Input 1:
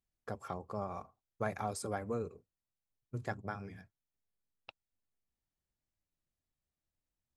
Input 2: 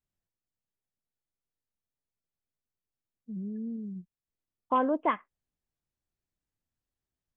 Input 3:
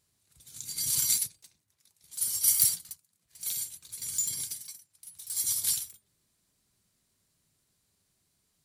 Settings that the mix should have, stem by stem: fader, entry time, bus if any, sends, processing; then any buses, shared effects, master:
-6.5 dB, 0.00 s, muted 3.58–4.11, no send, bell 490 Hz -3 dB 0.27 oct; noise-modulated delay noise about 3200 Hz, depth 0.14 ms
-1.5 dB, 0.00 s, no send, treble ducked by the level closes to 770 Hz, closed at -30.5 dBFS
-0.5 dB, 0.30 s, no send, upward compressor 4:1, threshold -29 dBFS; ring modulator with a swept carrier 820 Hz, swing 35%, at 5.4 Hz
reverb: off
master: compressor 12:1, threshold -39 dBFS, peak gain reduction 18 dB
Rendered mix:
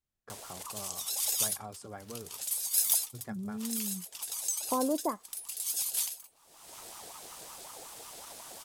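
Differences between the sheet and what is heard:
stem 1: missing noise-modulated delay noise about 3200 Hz, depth 0.14 ms; master: missing compressor 12:1, threshold -39 dBFS, peak gain reduction 18 dB

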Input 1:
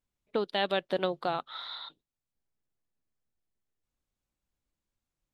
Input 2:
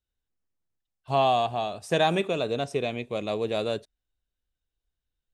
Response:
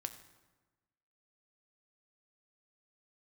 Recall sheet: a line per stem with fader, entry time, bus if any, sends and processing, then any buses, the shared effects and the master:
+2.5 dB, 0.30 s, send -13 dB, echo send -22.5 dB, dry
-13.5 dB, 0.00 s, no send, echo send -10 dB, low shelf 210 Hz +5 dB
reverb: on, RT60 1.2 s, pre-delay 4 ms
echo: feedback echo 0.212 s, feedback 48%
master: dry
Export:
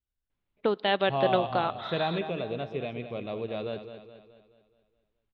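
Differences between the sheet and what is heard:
stem 2 -13.5 dB -> -7.0 dB; master: extra LPF 3600 Hz 24 dB/oct

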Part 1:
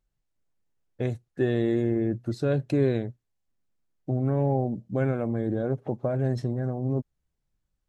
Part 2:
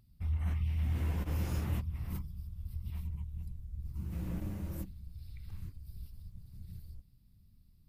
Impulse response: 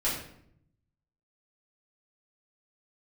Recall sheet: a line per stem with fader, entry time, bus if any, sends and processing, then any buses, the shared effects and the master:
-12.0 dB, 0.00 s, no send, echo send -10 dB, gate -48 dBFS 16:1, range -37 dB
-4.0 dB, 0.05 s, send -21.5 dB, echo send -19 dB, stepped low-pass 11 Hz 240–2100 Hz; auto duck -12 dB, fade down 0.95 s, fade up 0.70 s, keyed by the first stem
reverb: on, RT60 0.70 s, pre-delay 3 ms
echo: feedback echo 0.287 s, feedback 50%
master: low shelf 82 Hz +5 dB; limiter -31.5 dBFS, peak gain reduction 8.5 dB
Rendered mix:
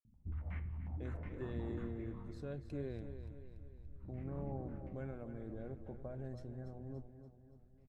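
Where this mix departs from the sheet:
stem 1 -12.0 dB -> -20.0 dB; master: missing low shelf 82 Hz +5 dB

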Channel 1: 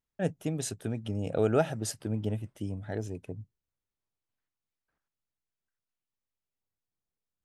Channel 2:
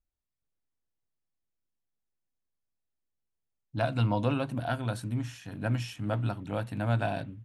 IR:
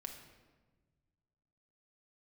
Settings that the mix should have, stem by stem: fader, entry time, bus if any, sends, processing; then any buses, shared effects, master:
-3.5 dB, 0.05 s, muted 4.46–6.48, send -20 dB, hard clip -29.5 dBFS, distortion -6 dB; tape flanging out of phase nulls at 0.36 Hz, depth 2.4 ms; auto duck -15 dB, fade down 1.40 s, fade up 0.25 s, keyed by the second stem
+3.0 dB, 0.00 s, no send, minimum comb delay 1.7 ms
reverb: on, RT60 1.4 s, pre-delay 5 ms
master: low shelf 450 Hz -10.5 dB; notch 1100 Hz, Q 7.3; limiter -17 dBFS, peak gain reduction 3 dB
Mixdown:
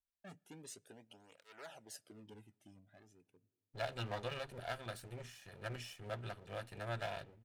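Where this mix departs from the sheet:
stem 1 -3.5 dB -> -11.0 dB; stem 2 +3.0 dB -> -7.0 dB

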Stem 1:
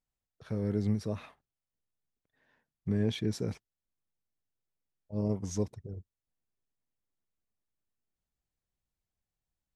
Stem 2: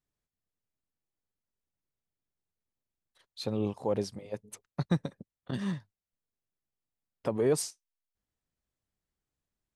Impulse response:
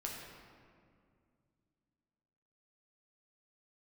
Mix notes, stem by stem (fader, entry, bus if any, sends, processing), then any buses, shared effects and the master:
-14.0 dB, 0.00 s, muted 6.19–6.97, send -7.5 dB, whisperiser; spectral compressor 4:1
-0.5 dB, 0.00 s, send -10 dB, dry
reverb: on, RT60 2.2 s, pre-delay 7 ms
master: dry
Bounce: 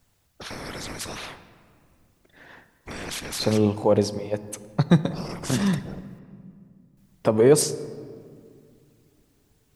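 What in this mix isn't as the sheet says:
stem 1 -14.0 dB -> -6.0 dB; stem 2 -0.5 dB -> +9.0 dB

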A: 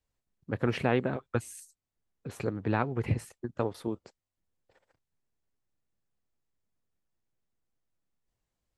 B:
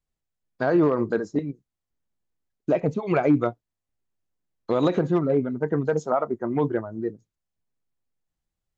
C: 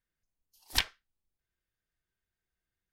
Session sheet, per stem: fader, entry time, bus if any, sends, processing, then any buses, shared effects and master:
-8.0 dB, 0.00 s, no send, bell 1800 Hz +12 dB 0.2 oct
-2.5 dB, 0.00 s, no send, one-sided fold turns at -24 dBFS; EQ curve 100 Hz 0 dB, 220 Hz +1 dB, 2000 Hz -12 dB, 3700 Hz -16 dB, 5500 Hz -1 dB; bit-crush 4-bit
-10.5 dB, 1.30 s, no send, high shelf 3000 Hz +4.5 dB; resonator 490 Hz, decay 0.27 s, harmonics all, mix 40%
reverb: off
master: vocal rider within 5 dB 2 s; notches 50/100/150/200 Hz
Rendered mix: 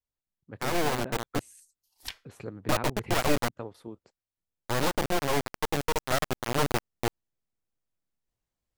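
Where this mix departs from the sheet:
stem A: missing bell 1800 Hz +12 dB 0.2 oct; stem B: missing EQ curve 100 Hz 0 dB, 220 Hz +1 dB, 2000 Hz -12 dB, 3700 Hz -16 dB, 5500 Hz -1 dB; master: missing notches 50/100/150/200 Hz

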